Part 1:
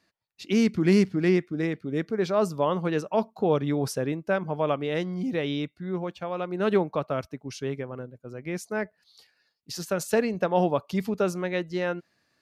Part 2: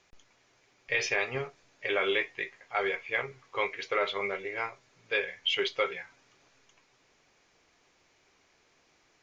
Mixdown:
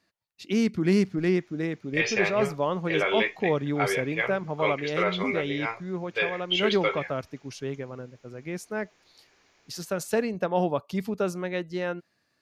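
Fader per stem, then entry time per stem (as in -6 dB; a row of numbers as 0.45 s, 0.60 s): -2.0 dB, +2.5 dB; 0.00 s, 1.05 s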